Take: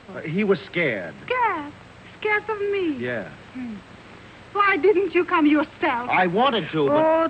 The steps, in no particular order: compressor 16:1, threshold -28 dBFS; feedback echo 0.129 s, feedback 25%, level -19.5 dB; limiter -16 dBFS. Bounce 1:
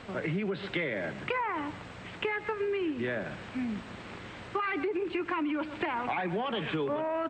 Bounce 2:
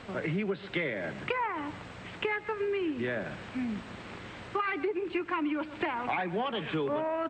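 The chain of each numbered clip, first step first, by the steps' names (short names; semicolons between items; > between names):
feedback echo > limiter > compressor; feedback echo > compressor > limiter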